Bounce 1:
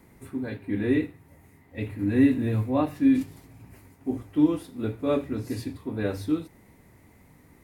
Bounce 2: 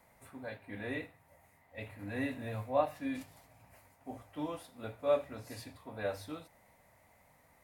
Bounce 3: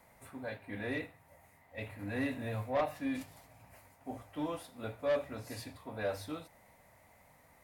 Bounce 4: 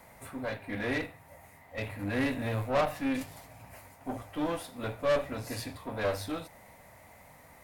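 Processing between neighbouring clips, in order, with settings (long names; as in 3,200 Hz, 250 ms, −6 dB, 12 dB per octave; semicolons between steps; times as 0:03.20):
low shelf with overshoot 470 Hz −8.5 dB, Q 3; level −6 dB
soft clipping −28 dBFS, distortion −11 dB; level +2.5 dB
one-sided soft clipper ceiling −42 dBFS; level +8.5 dB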